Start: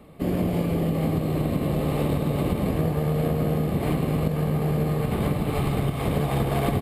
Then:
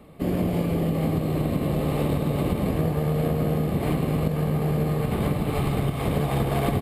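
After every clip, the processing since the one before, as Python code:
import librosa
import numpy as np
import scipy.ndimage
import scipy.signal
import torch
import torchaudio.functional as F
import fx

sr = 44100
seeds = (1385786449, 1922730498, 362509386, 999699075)

y = x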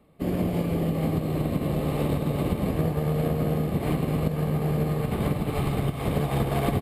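y = fx.upward_expand(x, sr, threshold_db=-42.0, expansion=1.5)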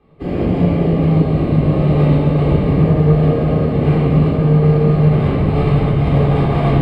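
y = fx.air_absorb(x, sr, metres=150.0)
y = fx.room_shoebox(y, sr, seeds[0], volume_m3=850.0, walls='mixed', distance_m=3.8)
y = y * 10.0 ** (1.5 / 20.0)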